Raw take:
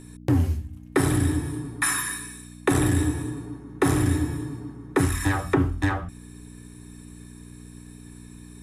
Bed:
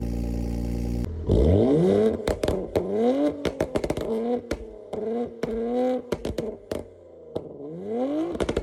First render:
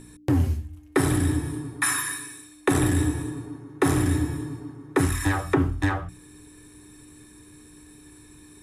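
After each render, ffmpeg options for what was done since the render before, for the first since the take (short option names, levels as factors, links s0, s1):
-af "bandreject=f=60:t=h:w=4,bandreject=f=120:t=h:w=4,bandreject=f=180:t=h:w=4,bandreject=f=240:t=h:w=4"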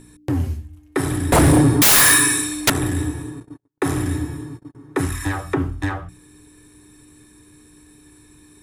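-filter_complex "[0:a]asettb=1/sr,asplit=3[s0][s1][s2];[s0]atrim=end=1.324[s3];[s1]atrim=start=1.32:end=2.7,asetpts=PTS-STARTPTS,afade=t=in:d=0.004:c=qsin,afade=t=out:st=1.376:d=0.004:c=qsin,aeval=exprs='0.355*sin(PI/2*8.91*val(0)/0.355)':c=same[s4];[s2]atrim=start=2.696[s5];[s3][s4]acrossfade=d=0.004:c1=hsin:c2=qsin[s6];[s6][s5]acrossfade=d=0.004:c1=qsin:c2=hsin,asettb=1/sr,asplit=3[s7][s8][s9];[s7]atrim=end=3.404[s10];[s8]atrim=start=3.4:end=4.75,asetpts=PTS-STARTPTS,afade=t=in:d=0.004:c=qsin,afade=t=out:st=1.346:d=0.004:c=qsin,agate=range=0.00794:threshold=0.0141:ratio=16:release=100:detection=peak[s11];[s9]atrim=start=4.746[s12];[s10][s11]acrossfade=d=0.004:c1=hsin:c2=qsin[s13];[s13][s12]acrossfade=d=0.004:c1=qsin:c2=hsin"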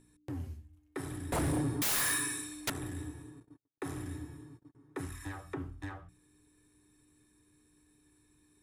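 -af "volume=0.119"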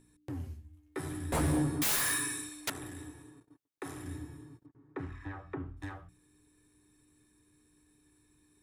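-filter_complex "[0:a]asettb=1/sr,asplit=3[s0][s1][s2];[s0]atrim=end=0.634[s3];[s1]atrim=start=0.63:end=1.96,asetpts=PTS-STARTPTS,afade=t=in:d=0.004:c=qsin,afade=t=out:st=1.326:d=0.004:c=qsin,asplit=2[s4][s5];[s5]adelay=13,volume=0.631[s6];[s4][s6]amix=inputs=2:normalize=0,atrim=end_sample=58653[s7];[s2]atrim=start=1.956[s8];[s3][s7]acrossfade=d=0.004:c1=hsin:c2=qsin[s9];[s9][s8]acrossfade=d=0.004:c1=qsin:c2=hsin,asettb=1/sr,asplit=3[s10][s11][s12];[s10]atrim=end=2.494[s13];[s11]atrim=start=2.49:end=4.05,asetpts=PTS-STARTPTS,afade=t=in:d=0.004:c=qsin,afade=t=out:st=1.556:d=0.004:c=qsin,lowshelf=f=260:g=-8[s14];[s12]atrim=start=4.046[s15];[s13][s14]acrossfade=d=0.004:c1=hsin:c2=qsin[s16];[s16][s15]acrossfade=d=0.004:c1=qsin:c2=hsin,asettb=1/sr,asplit=3[s17][s18][s19];[s17]atrim=end=4.664[s20];[s18]atrim=start=4.66:end=5.77,asetpts=PTS-STARTPTS,afade=t=in:d=0.004:c=qsin,afade=t=out:st=1.106:d=0.004:c=qsin,lowpass=2300[s21];[s19]atrim=start=5.766[s22];[s20][s21]acrossfade=d=0.004:c1=hsin:c2=qsin[s23];[s23][s22]acrossfade=d=0.004:c1=qsin:c2=hsin"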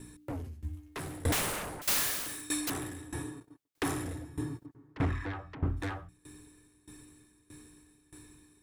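-af "aeval=exprs='0.0708*sin(PI/2*5.01*val(0)/0.0708)':c=same,aeval=exprs='val(0)*pow(10,-20*if(lt(mod(1.6*n/s,1),2*abs(1.6)/1000),1-mod(1.6*n/s,1)/(2*abs(1.6)/1000),(mod(1.6*n/s,1)-2*abs(1.6)/1000)/(1-2*abs(1.6)/1000))/20)':c=same"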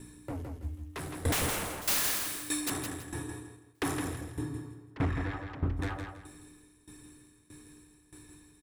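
-af "aecho=1:1:164|328|492|656:0.501|0.14|0.0393|0.011"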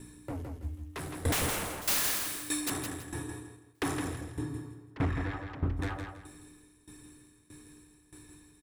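-filter_complex "[0:a]asettb=1/sr,asplit=3[s0][s1][s2];[s0]atrim=end=3.844[s3];[s1]atrim=start=3.84:end=4.49,asetpts=PTS-STARTPTS,afade=t=in:d=0.004:c=qsin,afade=t=out:st=0.646:d=0.004:c=qsin,equalizer=f=15000:w=1.4:g=-10[s4];[s2]atrim=start=4.486[s5];[s3][s4]acrossfade=d=0.004:c1=hsin:c2=qsin[s6];[s6][s5]acrossfade=d=0.004:c1=qsin:c2=hsin"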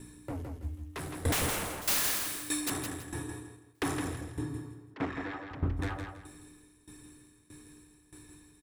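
-filter_complex "[0:a]asettb=1/sr,asplit=3[s0][s1][s2];[s0]atrim=end=4.944[s3];[s1]atrim=start=4.94:end=5.51,asetpts=PTS-STARTPTS,afade=t=in:d=0.004:c=qsin,afade=t=out:st=0.566:d=0.004:c=qsin,acrossover=split=190 7900:gain=0.141 1 0.141[s4][s5][s6];[s4][s5][s6]amix=inputs=3:normalize=0[s7];[s2]atrim=start=5.506[s8];[s3][s7]acrossfade=d=0.004:c1=hsin:c2=qsin[s9];[s9][s8]acrossfade=d=0.004:c1=qsin:c2=hsin"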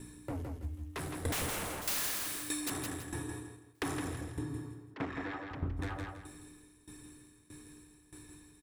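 -af "acompressor=threshold=0.0178:ratio=2.5"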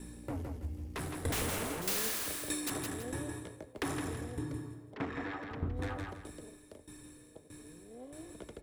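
-filter_complex "[1:a]volume=0.0708[s0];[0:a][s0]amix=inputs=2:normalize=0"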